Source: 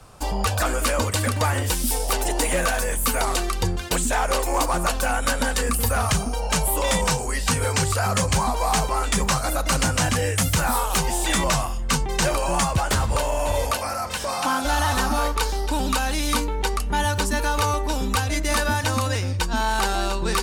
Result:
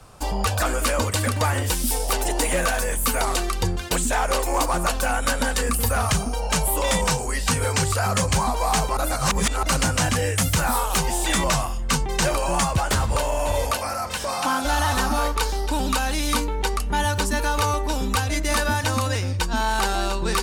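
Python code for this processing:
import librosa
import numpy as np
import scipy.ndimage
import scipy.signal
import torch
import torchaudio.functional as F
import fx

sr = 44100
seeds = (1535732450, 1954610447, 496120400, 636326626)

y = fx.edit(x, sr, fx.reverse_span(start_s=8.97, length_s=0.66), tone=tone)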